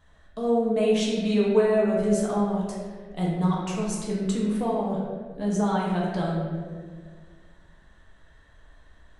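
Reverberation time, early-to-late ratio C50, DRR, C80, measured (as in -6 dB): 1.8 s, 0.0 dB, -5.0 dB, 2.5 dB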